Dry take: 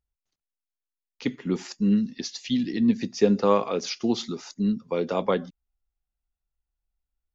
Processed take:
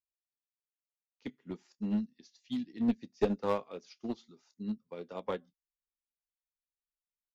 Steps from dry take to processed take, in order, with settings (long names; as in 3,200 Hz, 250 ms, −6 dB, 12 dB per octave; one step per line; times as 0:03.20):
ambience of single reflections 13 ms −15.5 dB, 28 ms −16 dB
asymmetric clip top −18.5 dBFS
expander for the loud parts 2.5 to 1, over −32 dBFS
level −5 dB